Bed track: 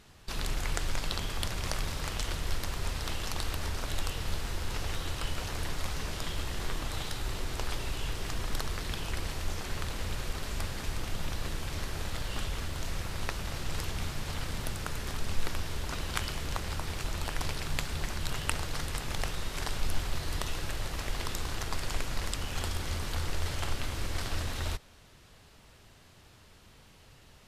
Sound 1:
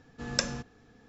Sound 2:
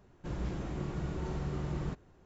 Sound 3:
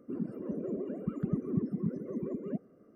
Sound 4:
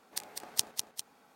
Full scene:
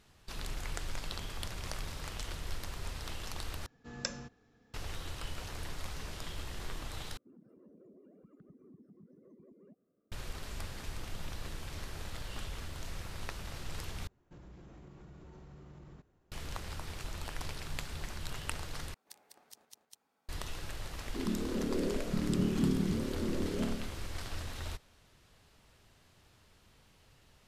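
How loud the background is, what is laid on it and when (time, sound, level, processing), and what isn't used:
bed track -7 dB
3.66 replace with 1 -9 dB
7.17 replace with 3 -18 dB + compressor 3:1, threshold -38 dBFS
14.07 replace with 2 -10.5 dB + compressor 4:1, threshold -39 dBFS
18.94 replace with 4 -16 dB + limiter -14.5 dBFS
21.06 add 3 -2.5 dB + flutter echo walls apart 4.6 m, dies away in 0.93 s

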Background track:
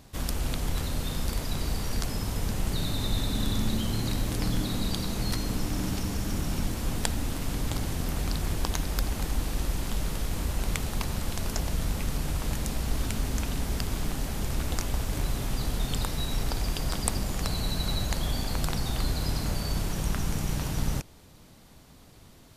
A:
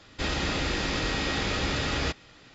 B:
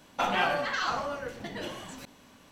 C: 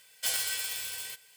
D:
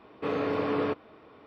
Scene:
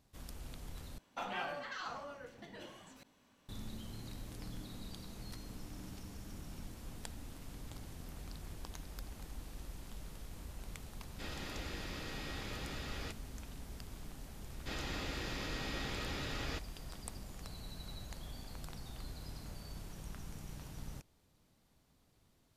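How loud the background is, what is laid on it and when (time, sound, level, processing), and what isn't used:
background track -18.5 dB
0.98 replace with B -13.5 dB
11 add A -16.5 dB
14.47 add A -13 dB
not used: C, D

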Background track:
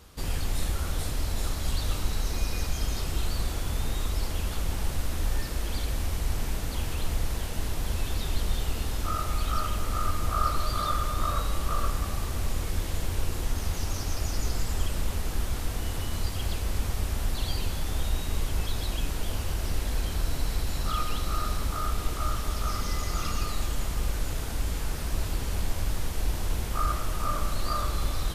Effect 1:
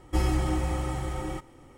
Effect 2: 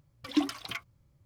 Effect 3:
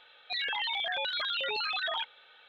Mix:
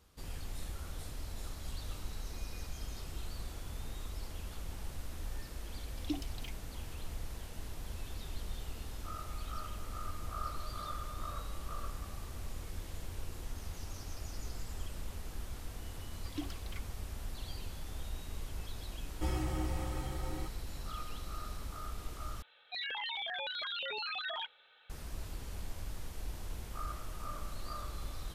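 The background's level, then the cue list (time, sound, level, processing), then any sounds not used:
background track -13.5 dB
5.73 add 2 -10 dB + Chebyshev band-stop 750–2600 Hz
16.01 add 2 -14.5 dB
19.08 add 1 -9.5 dB
22.42 replace with 3 -6.5 dB

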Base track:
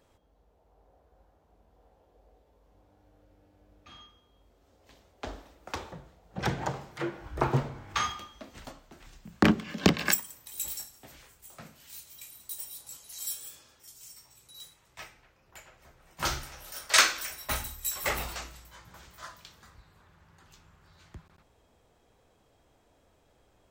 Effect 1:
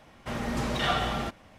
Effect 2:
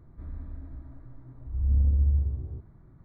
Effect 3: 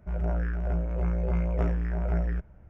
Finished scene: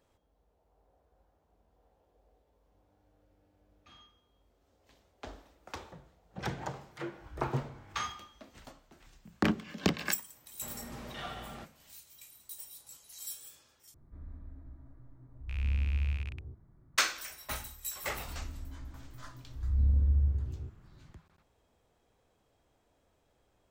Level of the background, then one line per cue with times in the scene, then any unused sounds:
base track -6.5 dB
10.35 add 1 -15 dB
13.94 replace with 2 -8 dB + rattling part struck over -30 dBFS, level -25 dBFS
18.09 add 2 -3.5 dB
not used: 3

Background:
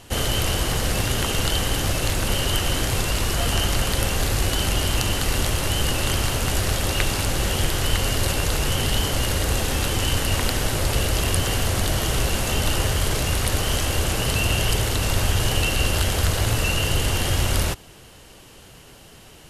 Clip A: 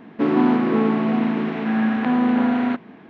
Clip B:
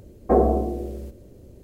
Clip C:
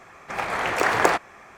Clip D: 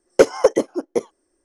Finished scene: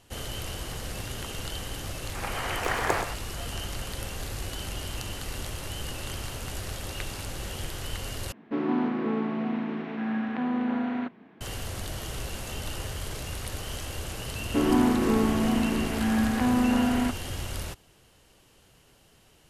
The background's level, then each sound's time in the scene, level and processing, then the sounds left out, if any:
background -13 dB
1.85 add C -8 dB + echo 0.125 s -9 dB
8.32 replace with A -9.5 dB
14.35 add A -5 dB
not used: B, D

